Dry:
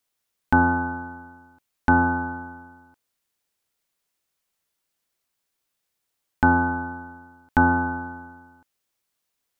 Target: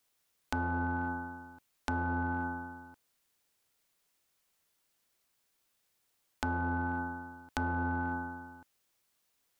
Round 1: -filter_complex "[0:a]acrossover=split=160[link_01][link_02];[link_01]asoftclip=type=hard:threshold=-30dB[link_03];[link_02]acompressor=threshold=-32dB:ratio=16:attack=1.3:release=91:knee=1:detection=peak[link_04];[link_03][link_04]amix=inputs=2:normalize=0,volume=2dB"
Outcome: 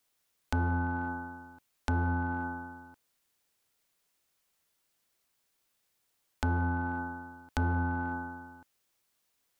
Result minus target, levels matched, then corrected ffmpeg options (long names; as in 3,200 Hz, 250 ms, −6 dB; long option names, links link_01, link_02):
hard clipping: distortion −6 dB
-filter_complex "[0:a]acrossover=split=160[link_01][link_02];[link_01]asoftclip=type=hard:threshold=-39dB[link_03];[link_02]acompressor=threshold=-32dB:ratio=16:attack=1.3:release=91:knee=1:detection=peak[link_04];[link_03][link_04]amix=inputs=2:normalize=0,volume=2dB"